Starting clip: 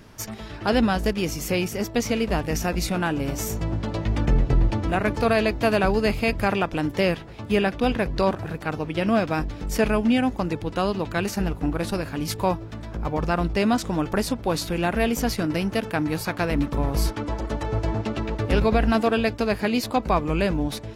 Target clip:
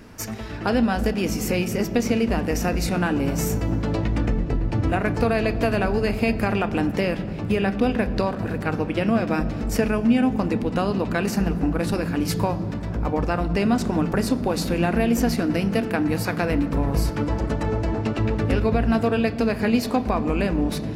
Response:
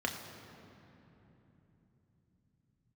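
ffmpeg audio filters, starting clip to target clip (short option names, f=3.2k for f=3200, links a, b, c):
-filter_complex "[0:a]acompressor=threshold=-22dB:ratio=6,asplit=2[a][b];[1:a]atrim=start_sample=2205,lowshelf=f=300:g=7.5[c];[b][c]afir=irnorm=-1:irlink=0,volume=-10.5dB[d];[a][d]amix=inputs=2:normalize=0"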